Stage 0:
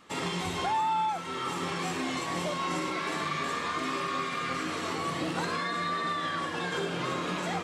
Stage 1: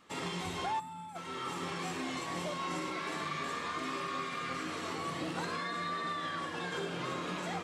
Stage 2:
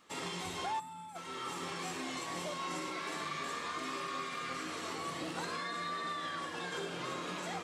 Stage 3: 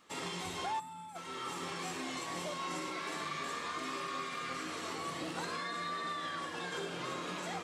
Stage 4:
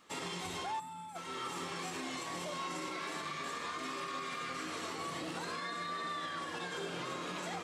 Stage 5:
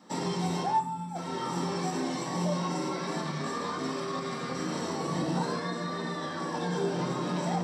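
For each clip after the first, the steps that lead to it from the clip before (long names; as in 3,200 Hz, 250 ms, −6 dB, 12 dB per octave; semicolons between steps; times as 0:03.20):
gain on a spectral selection 0:00.80–0:01.16, 260–7,100 Hz −13 dB; level −5.5 dB
bass and treble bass −4 dB, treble +4 dB; level −2 dB
no processing that can be heard
brickwall limiter −32 dBFS, peak gain reduction 6 dB; level +1 dB
convolution reverb RT60 0.45 s, pre-delay 3 ms, DRR 3 dB; level −2.5 dB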